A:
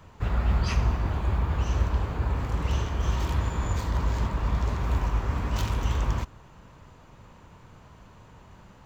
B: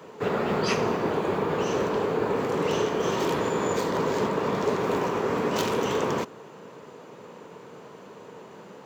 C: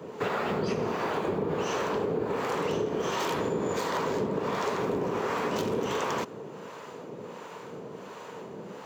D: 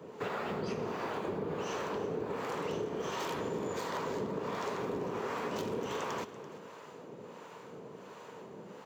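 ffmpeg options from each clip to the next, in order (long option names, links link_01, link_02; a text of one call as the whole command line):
ffmpeg -i in.wav -af "highpass=frequency=170:width=0.5412,highpass=frequency=170:width=1.3066,equalizer=frequency=440:width_type=o:width=0.64:gain=13,volume=5.5dB" out.wav
ffmpeg -i in.wav -filter_complex "[0:a]acrossover=split=620[link_01][link_02];[link_01]aeval=exprs='val(0)*(1-0.7/2+0.7/2*cos(2*PI*1.4*n/s))':channel_layout=same[link_03];[link_02]aeval=exprs='val(0)*(1-0.7/2-0.7/2*cos(2*PI*1.4*n/s))':channel_layout=same[link_04];[link_03][link_04]amix=inputs=2:normalize=0,acompressor=threshold=-33dB:ratio=5,volume=6.5dB" out.wav
ffmpeg -i in.wav -af "aecho=1:1:337:0.168,volume=-7dB" out.wav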